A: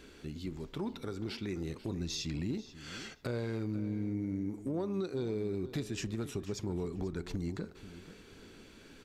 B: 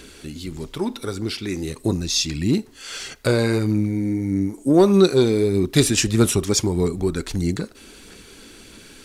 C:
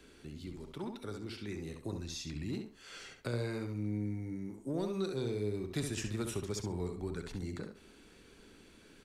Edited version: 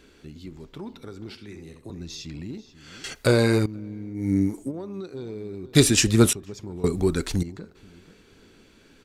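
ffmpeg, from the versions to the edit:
-filter_complex "[1:a]asplit=4[a][b][c][d];[0:a]asplit=6[e][f][g][h][i][j];[e]atrim=end=1.352[k];[2:a]atrim=start=1.348:end=1.902[l];[f]atrim=start=1.898:end=3.042[m];[a]atrim=start=3.038:end=3.662[n];[g]atrim=start=3.658:end=4.3[o];[b]atrim=start=4.14:end=4.72[p];[h]atrim=start=4.56:end=5.752[q];[c]atrim=start=5.748:end=6.332[r];[i]atrim=start=6.328:end=6.842[s];[d]atrim=start=6.838:end=7.432[t];[j]atrim=start=7.428[u];[k][l]acrossfade=d=0.004:c1=hsin:c2=hsin[v];[v][m]acrossfade=d=0.004:c1=hsin:c2=hsin[w];[w][n]acrossfade=d=0.004:c1=hsin:c2=hsin[x];[x][o]acrossfade=d=0.004:c1=hsin:c2=hsin[y];[y][p]acrossfade=d=0.16:c1=tri:c2=tri[z];[z][q]acrossfade=d=0.16:c1=tri:c2=tri[aa];[aa][r]acrossfade=d=0.004:c1=hsin:c2=hsin[ab];[ab][s]acrossfade=d=0.004:c1=hsin:c2=hsin[ac];[ac][t]acrossfade=d=0.004:c1=hsin:c2=hsin[ad];[ad][u]acrossfade=d=0.004:c1=hsin:c2=hsin"

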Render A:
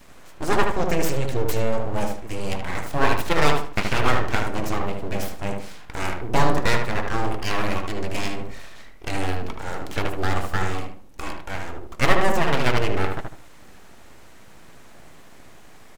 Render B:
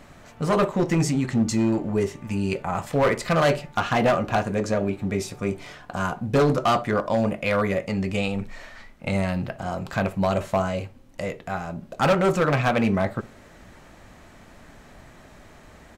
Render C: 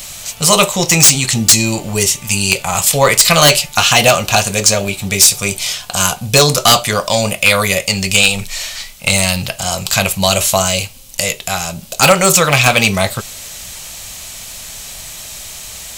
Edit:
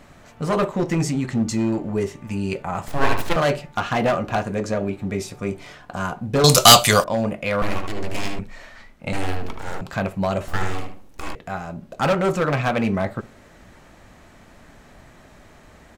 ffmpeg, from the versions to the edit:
-filter_complex "[0:a]asplit=4[a][b][c][d];[1:a]asplit=6[e][f][g][h][i][j];[e]atrim=end=2.882[k];[a]atrim=start=2.878:end=3.362[l];[f]atrim=start=3.358:end=6.442[m];[2:a]atrim=start=6.438:end=7.042[n];[g]atrim=start=7.038:end=7.622[o];[b]atrim=start=7.618:end=8.392[p];[h]atrim=start=8.388:end=9.132[q];[c]atrim=start=9.128:end=9.812[r];[i]atrim=start=9.808:end=10.482[s];[d]atrim=start=10.478:end=11.352[t];[j]atrim=start=11.348[u];[k][l]acrossfade=d=0.004:c1=hsin:c2=hsin[v];[v][m]acrossfade=d=0.004:c1=hsin:c2=hsin[w];[w][n]acrossfade=d=0.004:c1=hsin:c2=hsin[x];[x][o]acrossfade=d=0.004:c1=hsin:c2=hsin[y];[y][p]acrossfade=d=0.004:c1=hsin:c2=hsin[z];[z][q]acrossfade=d=0.004:c1=hsin:c2=hsin[aa];[aa][r]acrossfade=d=0.004:c1=hsin:c2=hsin[ab];[ab][s]acrossfade=d=0.004:c1=hsin:c2=hsin[ac];[ac][t]acrossfade=d=0.004:c1=hsin:c2=hsin[ad];[ad][u]acrossfade=d=0.004:c1=hsin:c2=hsin"

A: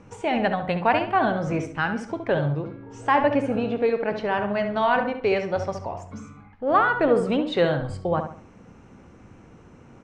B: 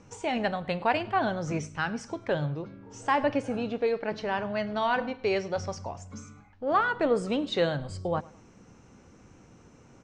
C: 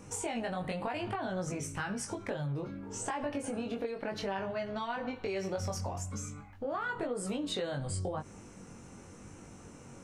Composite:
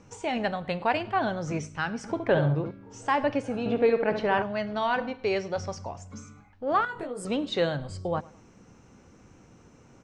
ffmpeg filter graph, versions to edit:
-filter_complex "[0:a]asplit=2[a][b];[1:a]asplit=4[c][d][e][f];[c]atrim=end=2.042[g];[a]atrim=start=2.038:end=2.712[h];[d]atrim=start=2.708:end=3.662[i];[b]atrim=start=3.658:end=4.422[j];[e]atrim=start=4.418:end=6.852[k];[2:a]atrim=start=6.848:end=7.252[l];[f]atrim=start=7.248[m];[g][h]acrossfade=d=0.004:c1=hsin:c2=hsin[n];[n][i]acrossfade=d=0.004:c1=hsin:c2=hsin[o];[o][j]acrossfade=d=0.004:c1=hsin:c2=hsin[p];[p][k]acrossfade=d=0.004:c1=hsin:c2=hsin[q];[q][l]acrossfade=d=0.004:c1=hsin:c2=hsin[r];[r][m]acrossfade=d=0.004:c1=hsin:c2=hsin"

